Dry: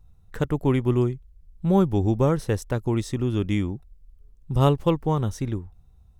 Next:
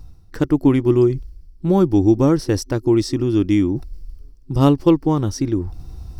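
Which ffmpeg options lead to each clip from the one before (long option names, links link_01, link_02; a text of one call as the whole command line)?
ffmpeg -i in.wav -af "superequalizer=6b=3.16:14b=3.16,areverse,acompressor=mode=upward:threshold=-19dB:ratio=2.5,areverse,volume=2.5dB" out.wav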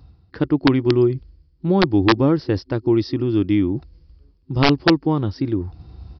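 ffmpeg -i in.wav -af "highpass=frequency=56:width=0.5412,highpass=frequency=56:width=1.3066,aresample=11025,aeval=exprs='(mod(1.88*val(0)+1,2)-1)/1.88':channel_layout=same,aresample=44100,volume=-1.5dB" out.wav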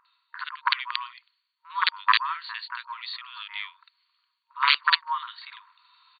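ffmpeg -i in.wav -filter_complex "[0:a]acontrast=39,afftfilt=real='re*between(b*sr/4096,930,4600)':imag='im*between(b*sr/4096,930,4600)':win_size=4096:overlap=0.75,acrossover=split=1700[link_01][link_02];[link_02]adelay=50[link_03];[link_01][link_03]amix=inputs=2:normalize=0" out.wav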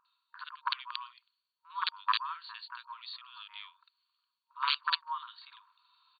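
ffmpeg -i in.wav -af "equalizer=frequency=2000:width=3.6:gain=-14,volume=-7.5dB" out.wav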